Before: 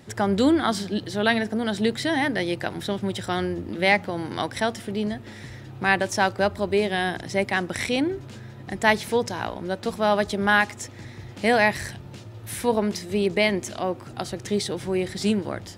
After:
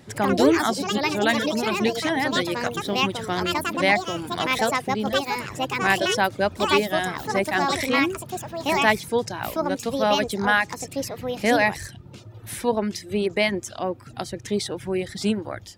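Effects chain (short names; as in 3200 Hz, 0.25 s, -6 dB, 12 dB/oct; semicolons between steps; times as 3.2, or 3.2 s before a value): reverb removal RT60 0.73 s; echoes that change speed 90 ms, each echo +5 st, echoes 2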